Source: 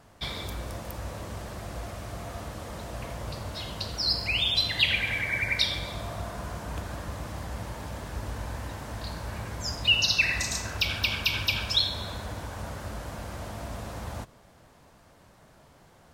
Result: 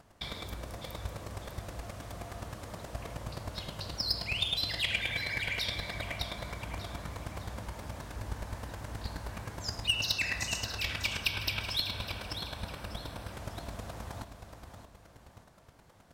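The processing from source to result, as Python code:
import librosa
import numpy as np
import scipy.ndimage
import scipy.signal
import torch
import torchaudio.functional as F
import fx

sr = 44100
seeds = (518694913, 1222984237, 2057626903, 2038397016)

y = 10.0 ** (-20.0 / 20.0) * np.tanh(x / 10.0 ** (-20.0 / 20.0))
y = fx.echo_feedback(y, sr, ms=601, feedback_pct=41, wet_db=-8.0)
y = fx.chopper(y, sr, hz=9.5, depth_pct=60, duty_pct=10)
y = fx.notch(y, sr, hz=6800.0, q=5.6, at=(11.13, 13.33))
y = y * librosa.db_to_amplitude(1.0)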